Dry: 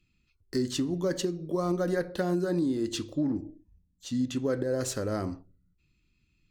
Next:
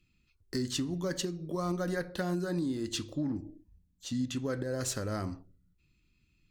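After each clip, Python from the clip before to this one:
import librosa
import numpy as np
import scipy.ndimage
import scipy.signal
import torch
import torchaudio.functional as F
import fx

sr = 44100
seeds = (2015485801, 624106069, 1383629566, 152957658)

y = fx.dynamic_eq(x, sr, hz=420.0, q=0.75, threshold_db=-40.0, ratio=4.0, max_db=-7)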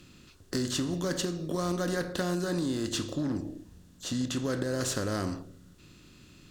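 y = fx.bin_compress(x, sr, power=0.6)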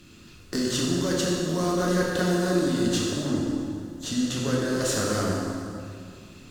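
y = fx.rev_plate(x, sr, seeds[0], rt60_s=2.3, hf_ratio=0.75, predelay_ms=0, drr_db=-3.5)
y = y * librosa.db_to_amplitude(1.5)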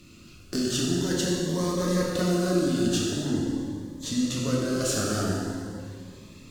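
y = fx.notch_cascade(x, sr, direction='rising', hz=0.45)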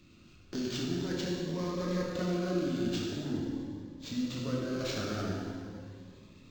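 y = np.interp(np.arange(len(x)), np.arange(len(x))[::4], x[::4])
y = y * librosa.db_to_amplitude(-7.5)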